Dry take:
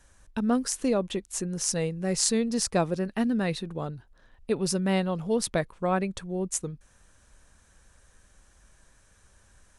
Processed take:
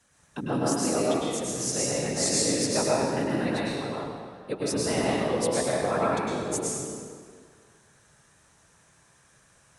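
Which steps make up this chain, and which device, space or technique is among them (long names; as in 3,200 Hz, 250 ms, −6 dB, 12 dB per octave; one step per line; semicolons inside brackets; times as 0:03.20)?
whispering ghost (random phases in short frames; high-pass filter 270 Hz 6 dB per octave; convolution reverb RT60 1.9 s, pre-delay 97 ms, DRR −5.5 dB)
level −3 dB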